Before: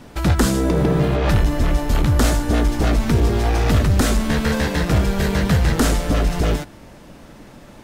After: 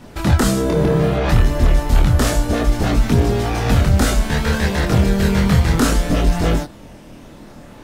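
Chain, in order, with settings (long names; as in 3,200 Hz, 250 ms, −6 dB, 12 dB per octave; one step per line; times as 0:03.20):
multi-voice chorus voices 2, 0.31 Hz, delay 25 ms, depth 1 ms
level +4.5 dB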